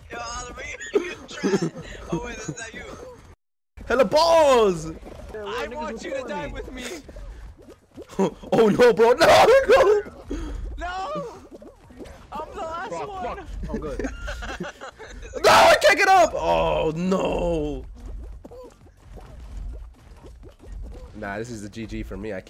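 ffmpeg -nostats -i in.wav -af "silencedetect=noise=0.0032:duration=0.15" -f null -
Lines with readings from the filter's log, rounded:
silence_start: 3.34
silence_end: 3.77 | silence_duration: 0.43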